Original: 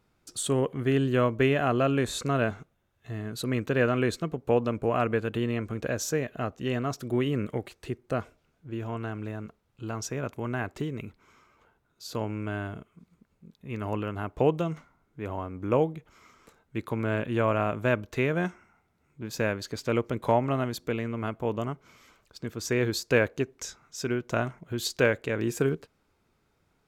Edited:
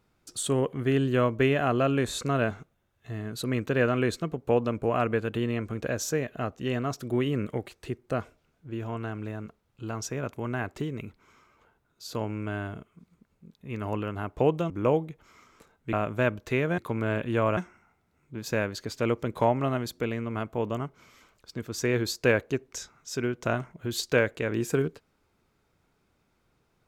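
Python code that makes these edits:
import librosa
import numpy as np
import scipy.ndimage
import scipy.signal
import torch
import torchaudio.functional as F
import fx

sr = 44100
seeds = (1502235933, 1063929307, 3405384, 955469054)

y = fx.edit(x, sr, fx.cut(start_s=14.7, length_s=0.87),
    fx.move(start_s=16.8, length_s=0.79, to_s=18.44), tone=tone)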